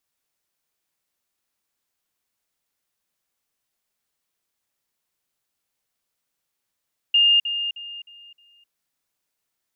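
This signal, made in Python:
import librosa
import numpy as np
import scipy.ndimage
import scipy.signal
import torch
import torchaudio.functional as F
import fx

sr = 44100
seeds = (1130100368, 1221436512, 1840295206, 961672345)

y = fx.level_ladder(sr, hz=2820.0, from_db=-13.0, step_db=-10.0, steps=5, dwell_s=0.26, gap_s=0.05)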